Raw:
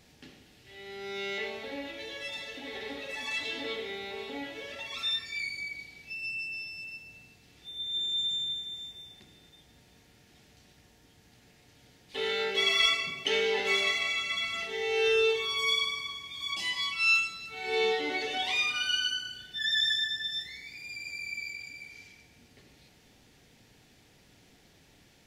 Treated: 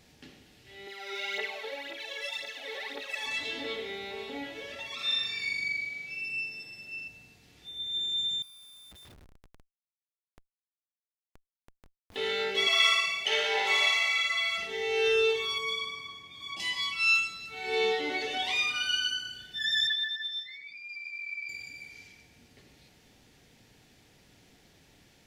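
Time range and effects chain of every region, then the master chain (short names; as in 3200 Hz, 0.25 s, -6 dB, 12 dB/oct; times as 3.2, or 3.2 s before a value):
0.87–3.26 HPF 510 Hz + phaser 1.9 Hz, delay 2.4 ms, feedback 65%
4.95–7.08 HPF 140 Hz + high shelf 5900 Hz -6 dB + flutter echo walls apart 7.2 m, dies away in 1.1 s
8.42–12.16 Schmitt trigger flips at -48.5 dBFS + compressor, threshold -53 dBFS
12.67–14.58 resonant low shelf 420 Hz -13 dB, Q 1.5 + flutter echo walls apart 9.7 m, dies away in 0.92 s
15.58–16.6 HPF 83 Hz + high shelf 2200 Hz -9 dB + mismatched tape noise reduction decoder only
19.87–21.49 spectral contrast raised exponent 1.9 + companded quantiser 6-bit + BPF 180–4900 Hz
whole clip: dry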